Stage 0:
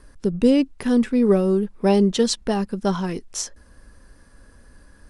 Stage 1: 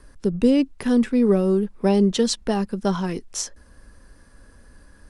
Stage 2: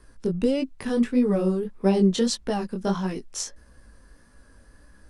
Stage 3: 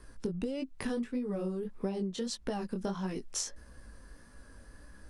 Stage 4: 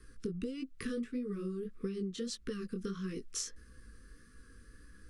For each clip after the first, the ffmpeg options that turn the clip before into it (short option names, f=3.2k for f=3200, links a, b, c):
-filter_complex "[0:a]acrossover=split=300[a][b];[b]acompressor=threshold=-18dB:ratio=6[c];[a][c]amix=inputs=2:normalize=0"
-af "flanger=delay=15.5:depth=7.1:speed=1.6"
-af "acompressor=threshold=-31dB:ratio=16"
-af "asuperstop=centerf=750:order=20:qfactor=1.3,volume=-3dB"